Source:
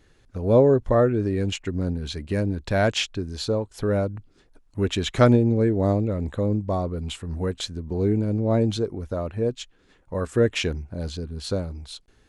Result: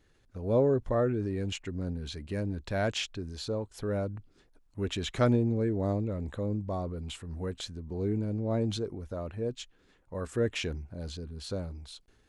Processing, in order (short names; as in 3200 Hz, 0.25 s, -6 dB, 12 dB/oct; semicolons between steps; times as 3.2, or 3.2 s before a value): transient shaper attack -1 dB, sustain +4 dB; gain -8.5 dB